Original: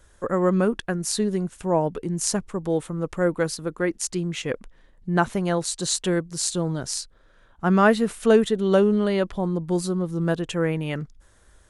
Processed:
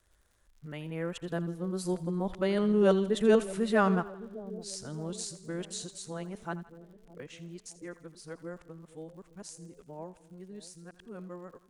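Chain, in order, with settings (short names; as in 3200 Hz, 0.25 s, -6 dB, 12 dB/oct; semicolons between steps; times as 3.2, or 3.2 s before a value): whole clip reversed; Doppler pass-by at 2.85, 7 m/s, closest 7.4 m; crackle 99/s -50 dBFS; on a send: split-band echo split 650 Hz, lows 0.614 s, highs 82 ms, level -15.5 dB; on the sum: gain -5.5 dB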